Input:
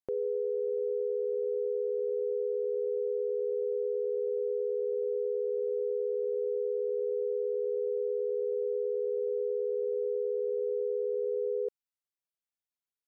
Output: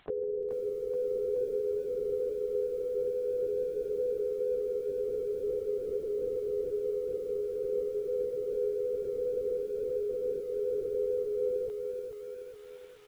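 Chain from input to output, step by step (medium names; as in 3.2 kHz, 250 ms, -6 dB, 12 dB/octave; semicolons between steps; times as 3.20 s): high-pass 320 Hz 12 dB/octave; peak limiter -29.5 dBFS, peak gain reduction 3 dB; LPC vocoder at 8 kHz whisper; echo from a far wall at 25 m, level -16 dB; upward compressor, threshold -40 dBFS; bit-crushed delay 428 ms, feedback 55%, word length 10-bit, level -6 dB; trim +2 dB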